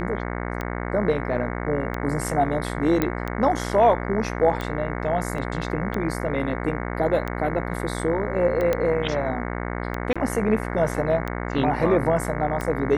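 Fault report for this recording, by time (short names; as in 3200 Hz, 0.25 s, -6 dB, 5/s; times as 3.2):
buzz 60 Hz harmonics 37 -29 dBFS
tick 45 rpm -15 dBFS
3.02 pop -9 dBFS
5.38 gap 2.8 ms
8.73 pop -10 dBFS
10.13–10.16 gap 26 ms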